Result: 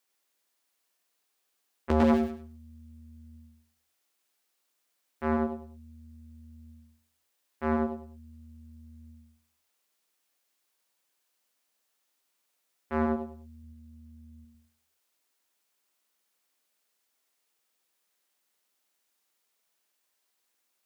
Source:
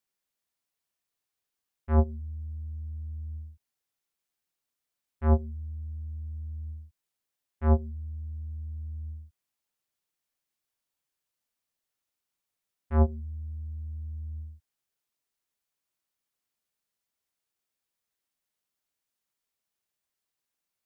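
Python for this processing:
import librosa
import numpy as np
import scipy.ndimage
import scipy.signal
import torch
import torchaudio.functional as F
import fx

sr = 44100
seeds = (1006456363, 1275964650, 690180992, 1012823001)

p1 = scipy.signal.sosfilt(scipy.signal.butter(2, 260.0, 'highpass', fs=sr, output='sos'), x)
p2 = fx.leveller(p1, sr, passes=5, at=(1.9, 2.31))
p3 = np.clip(10.0 ** (29.5 / 20.0) * p2, -1.0, 1.0) / 10.0 ** (29.5 / 20.0)
p4 = p2 + (p3 * librosa.db_to_amplitude(-9.0))
p5 = fx.notch_comb(p4, sr, f0_hz=460.0, at=(13.63, 14.45))
p6 = p5 + fx.echo_feedback(p5, sr, ms=99, feedback_pct=26, wet_db=-4, dry=0)
p7 = fx.transformer_sat(p6, sr, knee_hz=690.0)
y = p7 * librosa.db_to_amplitude(5.0)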